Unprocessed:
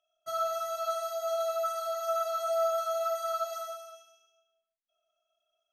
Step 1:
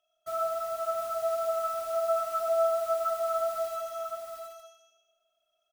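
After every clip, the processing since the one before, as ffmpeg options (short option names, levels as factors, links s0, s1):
-filter_complex "[0:a]acrossover=split=1600[s0][s1];[s1]aeval=exprs='(mod(237*val(0)+1,2)-1)/237':c=same[s2];[s0][s2]amix=inputs=2:normalize=0,aecho=1:1:712|864:0.596|0.112,volume=1.33"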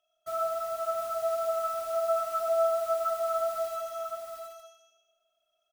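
-af anull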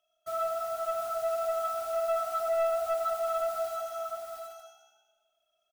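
-filter_complex "[0:a]asoftclip=type=tanh:threshold=0.0841,asplit=4[s0][s1][s2][s3];[s1]adelay=181,afreqshift=63,volume=0.1[s4];[s2]adelay=362,afreqshift=126,volume=0.0398[s5];[s3]adelay=543,afreqshift=189,volume=0.016[s6];[s0][s4][s5][s6]amix=inputs=4:normalize=0"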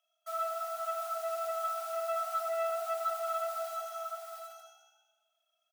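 -af "highpass=f=730:w=0.5412,highpass=f=730:w=1.3066,volume=0.891"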